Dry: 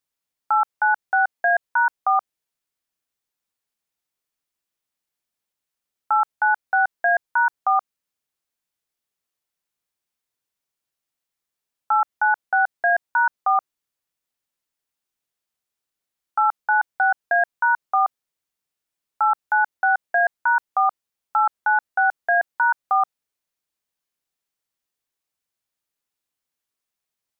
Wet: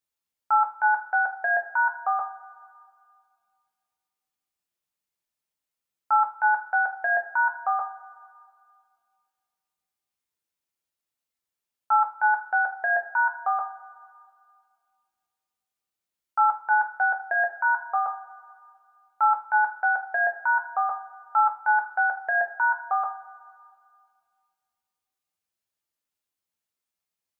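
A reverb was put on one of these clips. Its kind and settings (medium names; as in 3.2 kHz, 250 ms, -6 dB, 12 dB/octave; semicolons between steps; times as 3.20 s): two-slope reverb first 0.27 s, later 2.1 s, from -19 dB, DRR 1.5 dB; trim -5.5 dB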